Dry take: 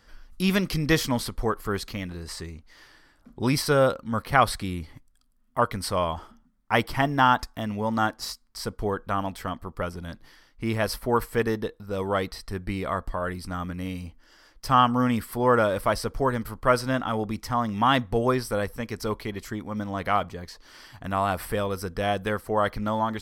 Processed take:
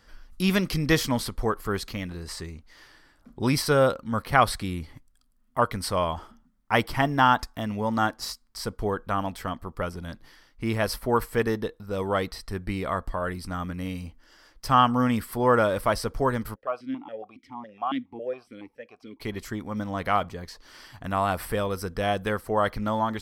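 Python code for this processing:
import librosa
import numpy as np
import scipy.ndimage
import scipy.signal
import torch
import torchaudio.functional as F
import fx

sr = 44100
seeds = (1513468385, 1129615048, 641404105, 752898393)

y = fx.vowel_held(x, sr, hz=7.2, at=(16.54, 19.2), fade=0.02)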